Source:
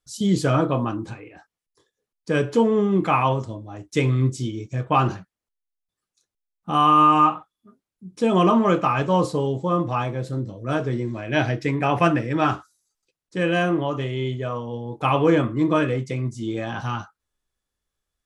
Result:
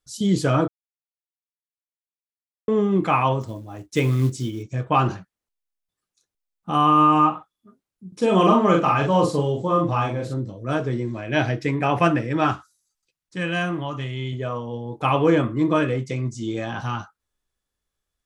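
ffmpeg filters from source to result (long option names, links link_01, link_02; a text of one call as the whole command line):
ffmpeg -i in.wav -filter_complex "[0:a]asettb=1/sr,asplit=3[link_01][link_02][link_03];[link_01]atrim=end=3.414[link_04];[link_02]atrim=start=3.41:end=4.63,asetpts=PTS-STARTPTS,afade=type=in:duration=0.004:curve=qsin,afade=type=out:start_time=1.216:duration=0.004:curve=qsin,acrusher=bits=7:mode=log:mix=0:aa=0.000001[link_05];[link_03]atrim=start=4.626[link_06];[link_04][link_05]acrossfade=duration=0.004:curve1=hsin:curve2=qsin[link_07];[link_07][link_06]acrossfade=duration=0.004:curve1=qsin:curve2=hsin,asettb=1/sr,asplit=3[link_08][link_09][link_10];[link_08]atrim=end=6.764[link_11];[link_09]atrim=start=6.76:end=7.34,asetpts=PTS-STARTPTS,afade=type=in:duration=0.004:curve=qsin,afade=type=out:start_time=0.576:duration=0.004:curve=qsin,tiltshelf=frequency=720:gain=3[link_12];[link_10]atrim=start=7.336[link_13];[link_11][link_12]acrossfade=duration=0.004:curve1=hsin:curve2=qsin[link_14];[link_14][link_13]acrossfade=duration=0.004:curve1=qsin:curve2=hsin,asettb=1/sr,asplit=3[link_15][link_16][link_17];[link_15]atrim=end=8.084[link_18];[link_16]atrim=start=8.08:end=10.34,asetpts=PTS-STARTPTS,afade=type=in:duration=0.004:curve=qsin,afade=type=out:start_time=2.256:duration=0.004:curve=qsin,asplit=2[link_19][link_20];[link_20]adelay=42,volume=-2.5dB[link_21];[link_19][link_21]amix=inputs=2:normalize=0,atrim=end_sample=99666[link_22];[link_17]atrim=start=10.336[link_23];[link_18][link_22]acrossfade=duration=0.004:curve1=hsin:curve2=qsin[link_24];[link_24][link_23]acrossfade=duration=0.004:curve1=qsin:curve2=hsin,asettb=1/sr,asplit=3[link_25][link_26][link_27];[link_25]atrim=end=12.524[link_28];[link_26]atrim=start=12.52:end=14.33,asetpts=PTS-STARTPTS,afade=type=in:duration=0.004:curve=qsin,afade=type=out:start_time=1.806:duration=0.004:curve=qsin,equalizer=frequency=440:width_type=o:width=1.4:gain=-9[link_29];[link_27]atrim=start=14.326[link_30];[link_28][link_29]acrossfade=duration=0.004:curve1=hsin:curve2=qsin[link_31];[link_31][link_30]acrossfade=duration=0.004:curve1=qsin:curve2=hsin,asettb=1/sr,asplit=3[link_32][link_33][link_34];[link_32]atrim=end=16.094[link_35];[link_33]atrim=start=16.09:end=16.67,asetpts=PTS-STARTPTS,afade=type=in:duration=0.004:curve=qsin,afade=type=out:start_time=0.576:duration=0.004:curve=qsin,lowpass=frequency=6900:width_type=q:width=1.8[link_36];[link_34]atrim=start=16.666[link_37];[link_35][link_36]acrossfade=duration=0.004:curve1=hsin:curve2=qsin[link_38];[link_38][link_37]acrossfade=duration=0.004:curve1=qsin:curve2=hsin,asplit=3[link_39][link_40][link_41];[link_39]atrim=end=0.68,asetpts=PTS-STARTPTS,afade=type=out:start_time=0.676:duration=0.004:curve=hsin[link_42];[link_40]atrim=start=0.68:end=2.68,asetpts=PTS-STARTPTS,volume=0[link_43];[link_41]atrim=start=2.68,asetpts=PTS-STARTPTS,afade=type=in:duration=0.004:curve=hsin[link_44];[link_42][link_43][link_44]concat=n=3:v=0:a=1" out.wav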